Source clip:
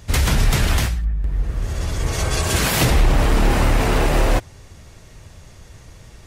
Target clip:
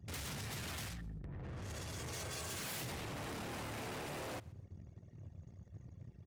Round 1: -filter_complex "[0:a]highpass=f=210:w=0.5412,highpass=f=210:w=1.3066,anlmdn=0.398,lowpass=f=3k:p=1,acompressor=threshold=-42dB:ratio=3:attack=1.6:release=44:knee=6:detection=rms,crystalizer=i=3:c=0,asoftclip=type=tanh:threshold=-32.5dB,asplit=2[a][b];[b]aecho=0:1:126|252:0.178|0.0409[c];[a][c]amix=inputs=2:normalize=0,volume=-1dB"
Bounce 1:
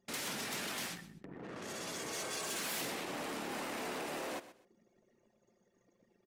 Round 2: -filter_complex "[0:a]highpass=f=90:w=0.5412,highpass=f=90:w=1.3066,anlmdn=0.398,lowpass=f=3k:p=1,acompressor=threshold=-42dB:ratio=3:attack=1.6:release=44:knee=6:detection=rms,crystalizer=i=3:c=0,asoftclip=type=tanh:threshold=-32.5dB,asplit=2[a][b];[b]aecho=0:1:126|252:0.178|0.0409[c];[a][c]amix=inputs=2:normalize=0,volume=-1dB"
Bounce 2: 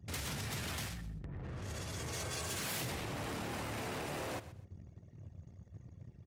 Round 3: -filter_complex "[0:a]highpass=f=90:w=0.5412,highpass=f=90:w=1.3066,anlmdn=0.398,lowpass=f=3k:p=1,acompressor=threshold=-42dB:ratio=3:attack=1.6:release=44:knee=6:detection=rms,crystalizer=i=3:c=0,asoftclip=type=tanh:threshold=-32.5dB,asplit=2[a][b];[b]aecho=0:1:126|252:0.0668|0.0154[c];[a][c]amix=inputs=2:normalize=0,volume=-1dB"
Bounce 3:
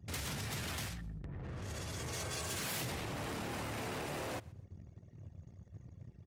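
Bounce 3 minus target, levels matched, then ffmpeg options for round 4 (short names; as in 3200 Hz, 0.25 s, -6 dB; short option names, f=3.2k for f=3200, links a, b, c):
soft clip: distortion -7 dB
-filter_complex "[0:a]highpass=f=90:w=0.5412,highpass=f=90:w=1.3066,anlmdn=0.398,lowpass=f=3k:p=1,acompressor=threshold=-42dB:ratio=3:attack=1.6:release=44:knee=6:detection=rms,crystalizer=i=3:c=0,asoftclip=type=tanh:threshold=-39.5dB,asplit=2[a][b];[b]aecho=0:1:126|252:0.0668|0.0154[c];[a][c]amix=inputs=2:normalize=0,volume=-1dB"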